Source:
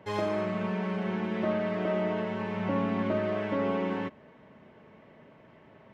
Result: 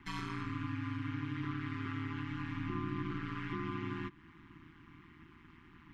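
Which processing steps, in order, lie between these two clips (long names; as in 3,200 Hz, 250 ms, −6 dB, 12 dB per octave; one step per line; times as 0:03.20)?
elliptic band-stop filter 270–1,100 Hz, stop band 50 dB
downward compressor 2 to 1, threshold −42 dBFS, peak gain reduction 8.5 dB
ring modulation 81 Hz
level +4 dB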